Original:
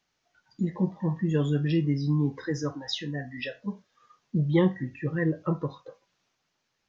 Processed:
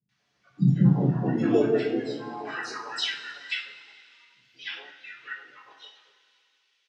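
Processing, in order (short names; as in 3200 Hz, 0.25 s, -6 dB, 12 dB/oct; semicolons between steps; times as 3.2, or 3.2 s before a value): notches 60/120/180/240/300/360/420 Hz; dynamic EQ 3200 Hz, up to -5 dB, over -54 dBFS, Q 1.9; high-pass sweep 160 Hz -> 3100 Hz, 0.8–3.36; harmoniser -4 st 0 dB, +7 st -11 dB; air absorption 60 m; three bands offset in time lows, highs, mids 90/190 ms, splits 260/1000 Hz; two-slope reverb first 0.33 s, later 2.6 s, from -18 dB, DRR -4.5 dB; gain -2 dB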